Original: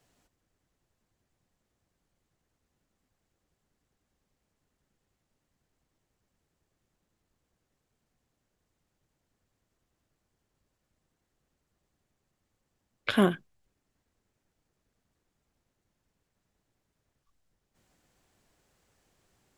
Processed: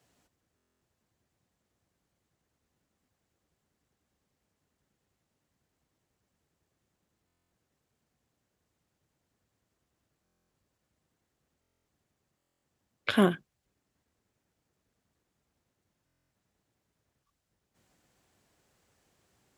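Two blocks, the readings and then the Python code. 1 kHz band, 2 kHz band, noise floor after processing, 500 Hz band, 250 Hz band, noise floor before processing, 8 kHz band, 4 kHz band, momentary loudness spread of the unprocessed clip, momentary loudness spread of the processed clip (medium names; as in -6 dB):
0.0 dB, 0.0 dB, -82 dBFS, 0.0 dB, 0.0 dB, -82 dBFS, 0.0 dB, 0.0 dB, 13 LU, 13 LU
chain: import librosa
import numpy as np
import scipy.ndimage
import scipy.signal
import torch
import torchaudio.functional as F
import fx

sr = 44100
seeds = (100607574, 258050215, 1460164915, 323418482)

y = scipy.signal.sosfilt(scipy.signal.butter(2, 57.0, 'highpass', fs=sr, output='sos'), x)
y = fx.buffer_glitch(y, sr, at_s=(0.56, 7.26, 10.24, 11.6, 12.37, 16.05), block=1024, repeats=10)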